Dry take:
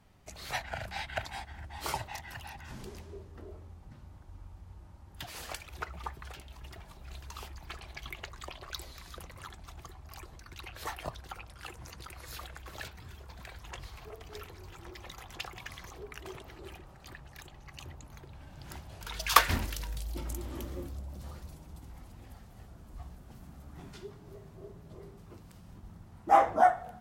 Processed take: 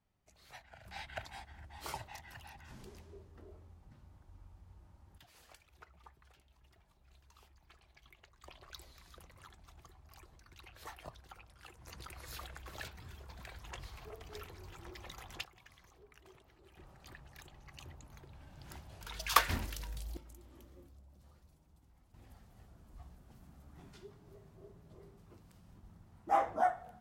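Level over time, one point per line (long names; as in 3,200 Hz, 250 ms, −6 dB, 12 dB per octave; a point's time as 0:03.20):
−18.5 dB
from 0:00.86 −8 dB
from 0:05.18 −19 dB
from 0:08.44 −10.5 dB
from 0:11.87 −3 dB
from 0:15.44 −16 dB
from 0:16.77 −5.5 dB
from 0:20.17 −18 dB
from 0:22.14 −8 dB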